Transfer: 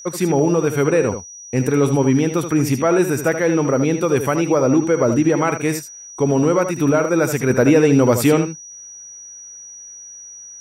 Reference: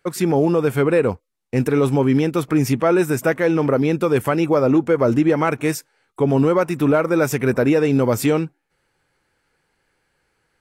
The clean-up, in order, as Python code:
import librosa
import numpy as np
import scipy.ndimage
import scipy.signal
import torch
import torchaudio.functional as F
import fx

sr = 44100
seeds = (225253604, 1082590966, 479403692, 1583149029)

y = fx.notch(x, sr, hz=5800.0, q=30.0)
y = fx.fix_echo_inverse(y, sr, delay_ms=77, level_db=-9.0)
y = fx.fix_level(y, sr, at_s=7.5, step_db=-3.0)